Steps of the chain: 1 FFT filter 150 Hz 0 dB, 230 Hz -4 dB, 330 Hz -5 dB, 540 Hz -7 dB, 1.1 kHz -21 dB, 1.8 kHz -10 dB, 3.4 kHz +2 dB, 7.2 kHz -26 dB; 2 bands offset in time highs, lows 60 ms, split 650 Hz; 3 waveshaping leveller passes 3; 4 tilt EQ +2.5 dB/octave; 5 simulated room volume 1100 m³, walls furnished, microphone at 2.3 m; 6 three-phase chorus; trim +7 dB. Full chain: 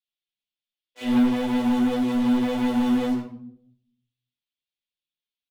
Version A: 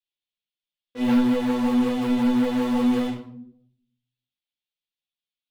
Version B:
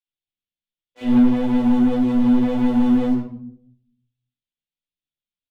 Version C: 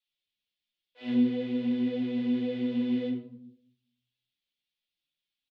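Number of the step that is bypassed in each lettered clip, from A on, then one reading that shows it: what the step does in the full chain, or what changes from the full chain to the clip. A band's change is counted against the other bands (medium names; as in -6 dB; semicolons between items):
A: 2, 500 Hz band +2.0 dB; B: 4, 2 kHz band -6.0 dB; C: 3, 2 kHz band -4.5 dB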